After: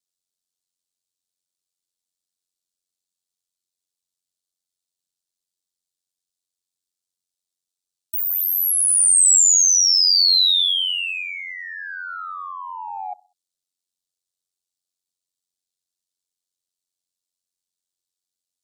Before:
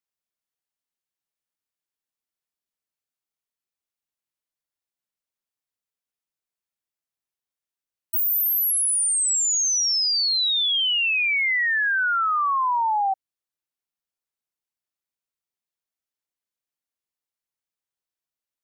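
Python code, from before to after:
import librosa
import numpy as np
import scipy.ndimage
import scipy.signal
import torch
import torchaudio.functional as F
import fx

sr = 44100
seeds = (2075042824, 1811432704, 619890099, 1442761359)

p1 = fx.graphic_eq(x, sr, hz=(1000, 2000, 4000, 8000), db=(-8, -11, 9, 10))
p2 = fx.echo_feedback(p1, sr, ms=64, feedback_pct=41, wet_db=-24.0)
p3 = 10.0 ** (-27.0 / 20.0) * np.tanh(p2 / 10.0 ** (-27.0 / 20.0))
p4 = p2 + (p3 * librosa.db_to_amplitude(-11.5))
y = p4 * np.sin(2.0 * np.pi * 45.0 * np.arange(len(p4)) / sr)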